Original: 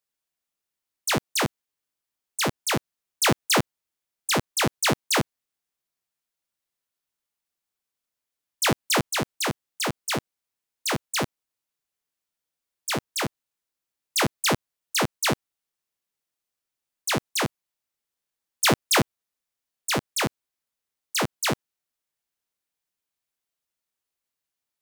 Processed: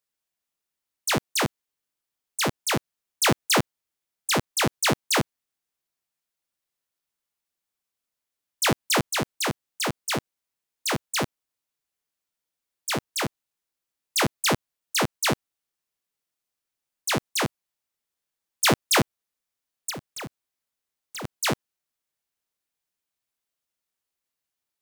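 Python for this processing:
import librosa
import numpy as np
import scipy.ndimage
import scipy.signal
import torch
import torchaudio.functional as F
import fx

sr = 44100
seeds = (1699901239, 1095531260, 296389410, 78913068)

y = fx.clip_hard(x, sr, threshold_db=-34.0, at=(19.89, 21.24), fade=0.02)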